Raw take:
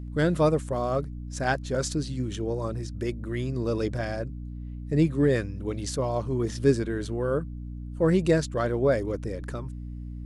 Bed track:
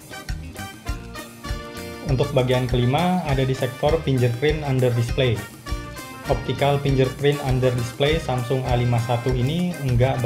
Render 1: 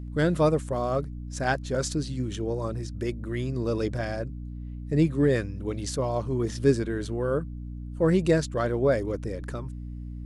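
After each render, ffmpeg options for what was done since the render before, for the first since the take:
-af anull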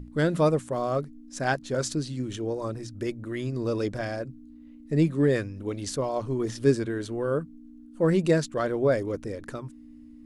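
-af "bandreject=f=60:t=h:w=6,bandreject=f=120:t=h:w=6,bandreject=f=180:t=h:w=6"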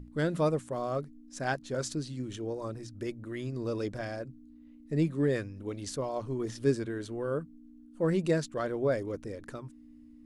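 -af "volume=0.531"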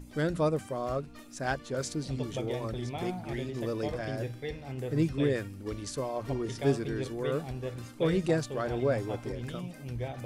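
-filter_complex "[1:a]volume=0.133[s0];[0:a][s0]amix=inputs=2:normalize=0"

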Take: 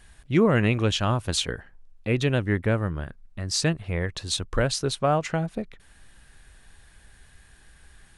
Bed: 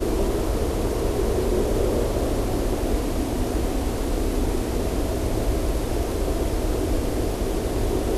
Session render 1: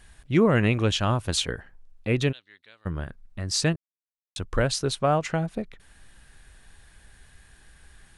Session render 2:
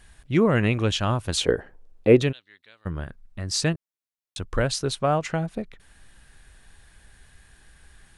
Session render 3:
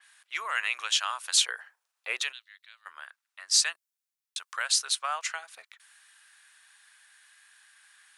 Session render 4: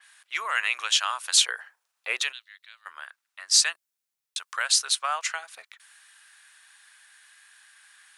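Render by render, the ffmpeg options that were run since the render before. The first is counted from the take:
-filter_complex "[0:a]asplit=3[s0][s1][s2];[s0]afade=t=out:st=2.31:d=0.02[s3];[s1]bandpass=f=3900:t=q:w=6.3,afade=t=in:st=2.31:d=0.02,afade=t=out:st=2.85:d=0.02[s4];[s2]afade=t=in:st=2.85:d=0.02[s5];[s3][s4][s5]amix=inputs=3:normalize=0,asplit=3[s6][s7][s8];[s6]atrim=end=3.76,asetpts=PTS-STARTPTS,afade=t=out:st=3.756:d=0.004:c=hsin[s9];[s7]atrim=start=3.76:end=4.36,asetpts=PTS-STARTPTS,volume=0[s10];[s8]atrim=start=4.36,asetpts=PTS-STARTPTS,afade=t=in:d=0.004:c=hsin[s11];[s9][s10][s11]concat=n=3:v=0:a=1"
-filter_complex "[0:a]asettb=1/sr,asplit=3[s0][s1][s2];[s0]atrim=end=1.404[s3];[s1]atrim=start=1.4:end=2.22,asetpts=PTS-STARTPTS,afade=t=in:d=0.004:c=qsin,afade=t=out:st=0.816:d=0.004:c=qsin,equalizer=f=440:w=0.72:g=13.5[s4];[s2]atrim=start=2.216[s5];[s3][s4]acrossfade=d=0.004:c1=hsin:c2=qsin[s6];[s6][s5]acrossfade=d=0.004:c1=qsin:c2=hsin"
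-af "highpass=f=1100:w=0.5412,highpass=f=1100:w=1.3066,adynamicequalizer=threshold=0.00631:dfrequency=4300:dqfactor=0.7:tfrequency=4300:tqfactor=0.7:attack=5:release=100:ratio=0.375:range=3.5:mode=boostabove:tftype=highshelf"
-af "volume=1.5"

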